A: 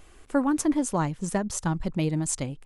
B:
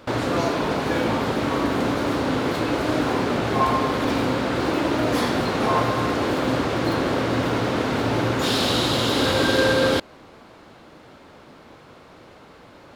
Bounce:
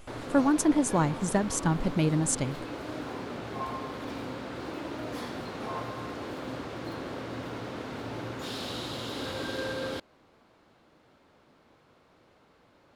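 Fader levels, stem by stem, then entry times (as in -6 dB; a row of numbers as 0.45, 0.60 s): +0.5, -15.0 dB; 0.00, 0.00 s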